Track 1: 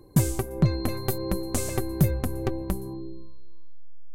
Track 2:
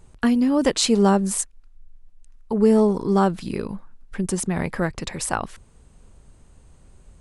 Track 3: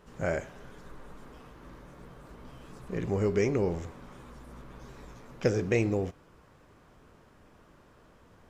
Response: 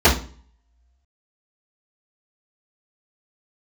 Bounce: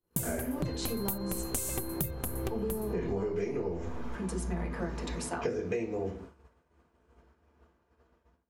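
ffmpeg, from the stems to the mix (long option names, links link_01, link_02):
-filter_complex "[0:a]highshelf=frequency=12000:gain=5,bandreject=frequency=50:width_type=h:width=6,bandreject=frequency=100:width_type=h:width=6,bandreject=frequency=150:width_type=h:width=6,bandreject=frequency=200:width_type=h:width=6,bandreject=frequency=250:width_type=h:width=6,bandreject=frequency=300:width_type=h:width=6,bandreject=frequency=350:width_type=h:width=6,aexciter=amount=1.6:drive=6.7:freq=2600,volume=-4dB[link_01];[1:a]highpass=180,acompressor=threshold=-22dB:ratio=6,volume=-12.5dB,asplit=3[link_02][link_03][link_04];[link_03]volume=-21dB[link_05];[2:a]lowshelf=frequency=240:gain=-8.5,dynaudnorm=framelen=100:gausssize=5:maxgain=9.5dB,volume=-10.5dB,asplit=2[link_06][link_07];[link_07]volume=-16.5dB[link_08];[link_04]apad=whole_len=374739[link_09];[link_06][link_09]sidechaincompress=threshold=-51dB:ratio=8:attack=16:release=191[link_10];[3:a]atrim=start_sample=2205[link_11];[link_05][link_08]amix=inputs=2:normalize=0[link_12];[link_12][link_11]afir=irnorm=-1:irlink=0[link_13];[link_01][link_02][link_10][link_13]amix=inputs=4:normalize=0,agate=range=-33dB:threshold=-38dB:ratio=3:detection=peak,acompressor=threshold=-29dB:ratio=16"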